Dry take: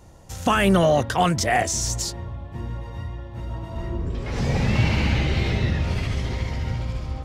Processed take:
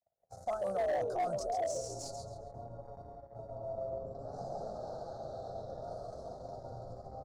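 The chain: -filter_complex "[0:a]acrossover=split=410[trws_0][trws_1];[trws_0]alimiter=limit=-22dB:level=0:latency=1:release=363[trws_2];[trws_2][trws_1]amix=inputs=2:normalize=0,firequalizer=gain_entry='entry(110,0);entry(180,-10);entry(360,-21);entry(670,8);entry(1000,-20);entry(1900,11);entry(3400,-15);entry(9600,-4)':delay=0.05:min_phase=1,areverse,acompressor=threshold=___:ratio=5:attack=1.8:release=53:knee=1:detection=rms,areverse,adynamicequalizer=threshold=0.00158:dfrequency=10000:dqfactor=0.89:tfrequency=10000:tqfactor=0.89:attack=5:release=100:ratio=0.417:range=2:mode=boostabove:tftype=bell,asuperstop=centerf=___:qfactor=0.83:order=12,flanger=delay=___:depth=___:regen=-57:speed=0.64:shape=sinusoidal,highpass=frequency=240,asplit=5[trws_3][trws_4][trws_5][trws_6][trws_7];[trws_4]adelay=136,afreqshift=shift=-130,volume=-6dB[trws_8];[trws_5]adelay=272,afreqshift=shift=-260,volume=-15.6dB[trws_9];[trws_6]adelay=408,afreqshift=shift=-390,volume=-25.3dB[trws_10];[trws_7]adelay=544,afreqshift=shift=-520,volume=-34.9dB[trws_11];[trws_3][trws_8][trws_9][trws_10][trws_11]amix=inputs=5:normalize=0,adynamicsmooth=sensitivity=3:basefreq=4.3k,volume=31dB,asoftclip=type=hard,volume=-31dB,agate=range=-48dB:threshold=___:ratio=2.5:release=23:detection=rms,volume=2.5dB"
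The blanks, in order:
-28dB, 2300, 4.4, 6, -50dB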